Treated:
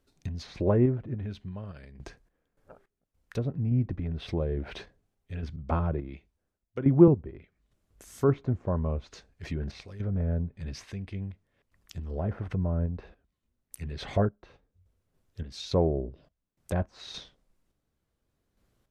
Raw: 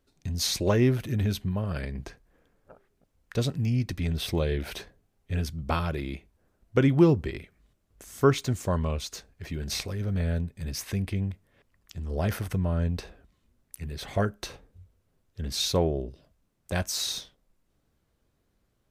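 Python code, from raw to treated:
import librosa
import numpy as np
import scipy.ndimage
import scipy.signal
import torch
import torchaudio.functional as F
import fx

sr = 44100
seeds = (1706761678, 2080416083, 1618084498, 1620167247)

y = fx.tremolo_random(x, sr, seeds[0], hz=3.5, depth_pct=85)
y = fx.env_lowpass_down(y, sr, base_hz=930.0, full_db=-28.5)
y = fx.band_widen(y, sr, depth_pct=40, at=(5.56, 7.08))
y = y * 10.0 ** (1.5 / 20.0)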